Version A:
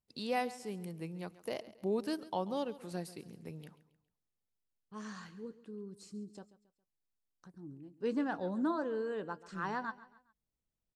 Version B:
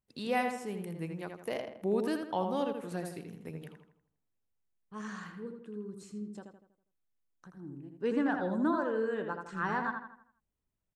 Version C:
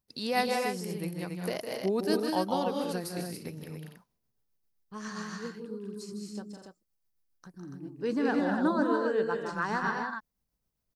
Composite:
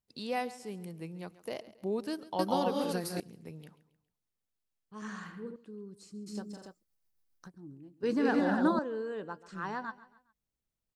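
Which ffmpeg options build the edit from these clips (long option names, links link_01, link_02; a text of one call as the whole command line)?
ffmpeg -i take0.wav -i take1.wav -i take2.wav -filter_complex "[2:a]asplit=3[link_01][link_02][link_03];[0:a]asplit=5[link_04][link_05][link_06][link_07][link_08];[link_04]atrim=end=2.392[link_09];[link_01]atrim=start=2.388:end=3.202[link_10];[link_05]atrim=start=3.198:end=5.022[link_11];[1:a]atrim=start=5.018:end=5.562[link_12];[link_06]atrim=start=5.558:end=6.28[link_13];[link_02]atrim=start=6.26:end=7.5[link_14];[link_07]atrim=start=7.48:end=8.032[link_15];[link_03]atrim=start=8.028:end=8.792[link_16];[link_08]atrim=start=8.788[link_17];[link_09][link_10]acrossfade=duration=0.004:curve1=hsin:curve2=hsin[link_18];[link_18][link_11]acrossfade=duration=0.004:curve1=hsin:curve2=hsin[link_19];[link_19][link_12]acrossfade=duration=0.004:curve1=hsin:curve2=hsin[link_20];[link_20][link_13]acrossfade=duration=0.004:curve1=hsin:curve2=hsin[link_21];[link_21][link_14]acrossfade=duration=0.02:curve1=tri:curve2=tri[link_22];[link_22][link_15]acrossfade=duration=0.02:curve1=tri:curve2=tri[link_23];[link_23][link_16]acrossfade=duration=0.004:curve1=hsin:curve2=hsin[link_24];[link_24][link_17]acrossfade=duration=0.004:curve1=hsin:curve2=hsin" out.wav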